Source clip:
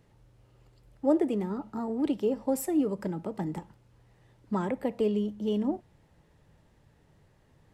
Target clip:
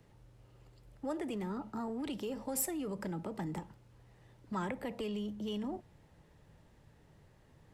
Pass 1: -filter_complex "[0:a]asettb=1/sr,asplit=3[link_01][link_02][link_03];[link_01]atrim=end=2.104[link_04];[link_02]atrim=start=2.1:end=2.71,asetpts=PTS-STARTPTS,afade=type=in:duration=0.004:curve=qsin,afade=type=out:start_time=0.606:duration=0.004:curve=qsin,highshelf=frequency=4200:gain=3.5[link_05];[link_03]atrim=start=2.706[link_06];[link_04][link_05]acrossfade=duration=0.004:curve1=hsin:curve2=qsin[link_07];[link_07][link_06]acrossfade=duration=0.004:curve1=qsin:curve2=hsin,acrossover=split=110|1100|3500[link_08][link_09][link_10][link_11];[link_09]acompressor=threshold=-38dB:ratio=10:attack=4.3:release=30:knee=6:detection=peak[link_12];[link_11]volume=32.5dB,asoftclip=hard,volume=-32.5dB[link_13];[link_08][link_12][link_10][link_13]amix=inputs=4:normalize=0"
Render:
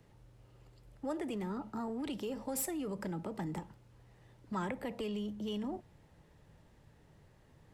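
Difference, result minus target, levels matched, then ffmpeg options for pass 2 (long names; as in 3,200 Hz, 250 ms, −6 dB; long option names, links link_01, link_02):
gain into a clipping stage and back: distortion +31 dB
-filter_complex "[0:a]asettb=1/sr,asplit=3[link_01][link_02][link_03];[link_01]atrim=end=2.104[link_04];[link_02]atrim=start=2.1:end=2.71,asetpts=PTS-STARTPTS,afade=type=in:duration=0.004:curve=qsin,afade=type=out:start_time=0.606:duration=0.004:curve=qsin,highshelf=frequency=4200:gain=3.5[link_05];[link_03]atrim=start=2.706[link_06];[link_04][link_05]acrossfade=duration=0.004:curve1=hsin:curve2=qsin[link_07];[link_07][link_06]acrossfade=duration=0.004:curve1=qsin:curve2=hsin,acrossover=split=110|1100|3500[link_08][link_09][link_10][link_11];[link_09]acompressor=threshold=-38dB:ratio=10:attack=4.3:release=30:knee=6:detection=peak[link_12];[link_11]volume=22.5dB,asoftclip=hard,volume=-22.5dB[link_13];[link_08][link_12][link_10][link_13]amix=inputs=4:normalize=0"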